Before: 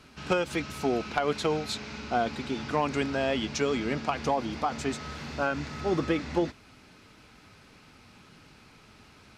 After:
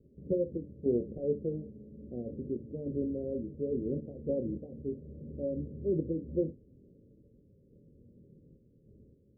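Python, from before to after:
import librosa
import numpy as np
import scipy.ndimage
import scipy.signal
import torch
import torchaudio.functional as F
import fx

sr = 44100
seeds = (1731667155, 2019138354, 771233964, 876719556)

y = fx.room_early_taps(x, sr, ms=(25, 62), db=(-8.0, -14.0))
y = fx.tremolo_random(y, sr, seeds[0], hz=3.5, depth_pct=55)
y = scipy.signal.sosfilt(scipy.signal.cheby1(6, 3, 560.0, 'lowpass', fs=sr, output='sos'), y)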